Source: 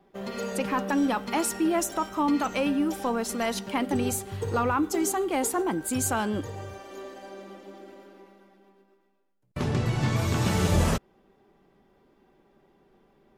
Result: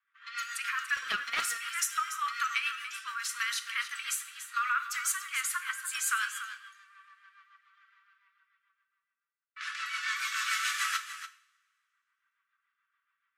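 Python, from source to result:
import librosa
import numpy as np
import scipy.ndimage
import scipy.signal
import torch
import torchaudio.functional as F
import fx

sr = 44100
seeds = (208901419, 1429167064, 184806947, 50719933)

y = fx.median_filter(x, sr, points=15, at=(6.57, 7.73))
y = scipy.signal.sosfilt(scipy.signal.butter(12, 1200.0, 'highpass', fs=sr, output='sos'), y)
y = fx.quant_float(y, sr, bits=4, at=(9.7, 10.49))
y = fx.dynamic_eq(y, sr, hz=1600.0, q=0.75, threshold_db=-48.0, ratio=4.0, max_db=7)
y = fx.rotary(y, sr, hz=7.0)
y = fx.env_lowpass(y, sr, base_hz=1700.0, full_db=-36.0)
y = y + 10.0 ** (-11.5 / 20.0) * np.pad(y, (int(288 * sr / 1000.0), 0))[:len(y)]
y = fx.rev_double_slope(y, sr, seeds[0], early_s=0.54, late_s=2.2, knee_db=-25, drr_db=9.5)
y = fx.doppler_dist(y, sr, depth_ms=0.46, at=(0.96, 1.58))
y = F.gain(torch.from_numpy(y), 1.0).numpy()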